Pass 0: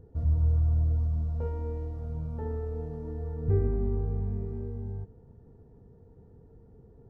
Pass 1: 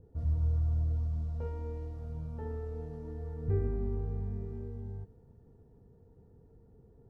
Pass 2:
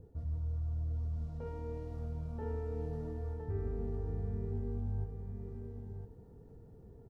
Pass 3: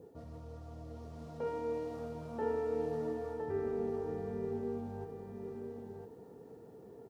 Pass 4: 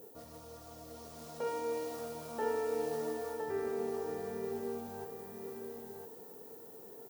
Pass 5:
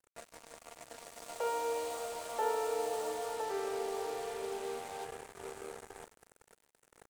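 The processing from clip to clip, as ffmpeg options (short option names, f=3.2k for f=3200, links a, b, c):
-af "adynamicequalizer=threshold=0.00178:dfrequency=1600:dqfactor=0.7:tfrequency=1600:tqfactor=0.7:attack=5:release=100:ratio=0.375:range=3:mode=boostabove:tftype=highshelf,volume=-5dB"
-af "areverse,acompressor=threshold=-38dB:ratio=6,areverse,aecho=1:1:1010:0.531,volume=3.5dB"
-af "highpass=300,bandreject=f=1.5k:w=18,volume=9dB"
-af "aemphasis=mode=production:type=riaa,volume=3.5dB"
-af "highpass=f=430:w=0.5412,highpass=f=430:w=1.3066,equalizer=f=440:t=q:w=4:g=-4,equalizer=f=1.8k:t=q:w=4:g=-7,equalizer=f=5.3k:t=q:w=4:g=-9,equalizer=f=8.3k:t=q:w=4:g=6,lowpass=f=9.2k:w=0.5412,lowpass=f=9.2k:w=1.3066,acrusher=bits=7:mix=0:aa=0.5,volume=5.5dB"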